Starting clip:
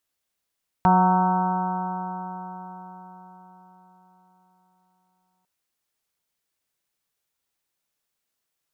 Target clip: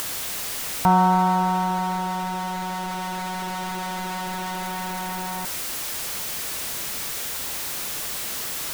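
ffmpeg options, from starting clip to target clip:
-af "aeval=exprs='val(0)+0.5*0.0447*sgn(val(0))':c=same,acompressor=mode=upward:threshold=-27dB:ratio=2.5"

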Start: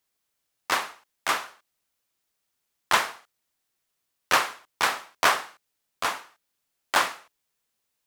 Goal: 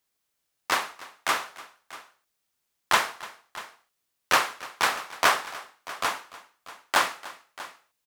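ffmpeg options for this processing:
-af "aecho=1:1:294|639:0.112|0.133"

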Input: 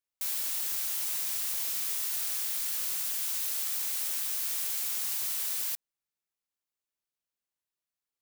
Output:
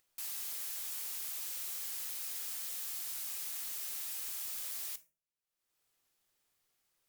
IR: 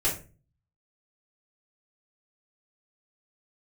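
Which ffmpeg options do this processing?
-filter_complex "[0:a]asetrate=51156,aresample=44100,asplit=2[a][b];[1:a]atrim=start_sample=2205[c];[b][c]afir=irnorm=-1:irlink=0,volume=-19dB[d];[a][d]amix=inputs=2:normalize=0,acompressor=mode=upward:threshold=-54dB:ratio=2.5,volume=-7.5dB"

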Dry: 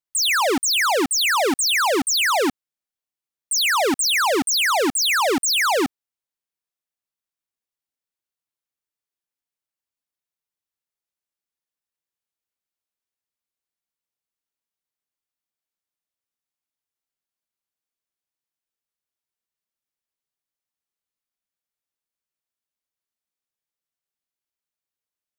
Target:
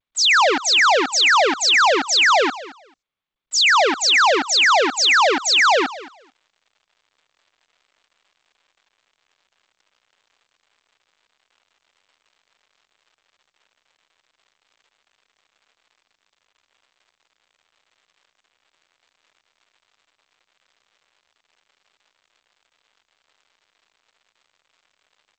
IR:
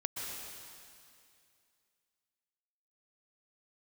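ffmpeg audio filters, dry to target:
-af "areverse,acompressor=mode=upward:threshold=-31dB:ratio=2.5,areverse,acrusher=bits=7:mix=0:aa=0.000001,highpass=500,lowpass=5.4k,aecho=1:1:220|440:0.126|0.0201,volume=5.5dB" -ar 16000 -c:a g722

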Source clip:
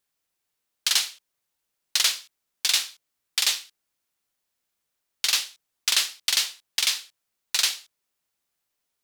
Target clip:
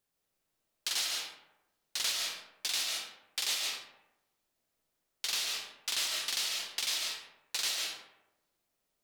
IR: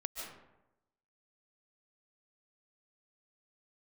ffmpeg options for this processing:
-filter_complex "[0:a]acrossover=split=770[a][b];[a]acontrast=80[c];[c][b]amix=inputs=2:normalize=0,alimiter=limit=-16.5dB:level=0:latency=1:release=50[d];[1:a]atrim=start_sample=2205[e];[d][e]afir=irnorm=-1:irlink=0,volume=-2dB"

